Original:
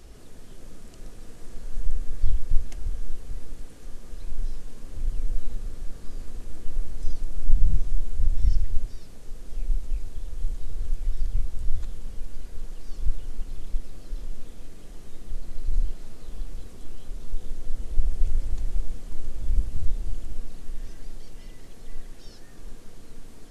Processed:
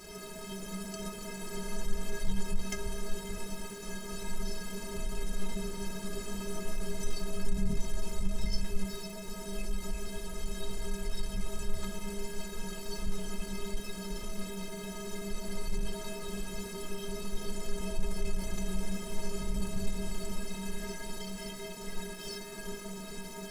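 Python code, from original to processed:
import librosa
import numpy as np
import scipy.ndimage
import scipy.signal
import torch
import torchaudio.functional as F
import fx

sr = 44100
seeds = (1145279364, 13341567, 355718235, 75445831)

y = fx.highpass(x, sr, hz=140.0, slope=6)
y = fx.leveller(y, sr, passes=3)
y = fx.stiff_resonator(y, sr, f0_hz=190.0, decay_s=0.34, stiffness=0.03)
y = y * librosa.db_to_amplitude(12.5)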